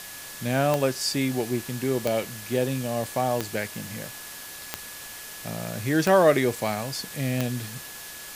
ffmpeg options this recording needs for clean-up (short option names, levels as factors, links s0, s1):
-af "adeclick=t=4,bandreject=f=1700:w=30,afwtdn=0.011"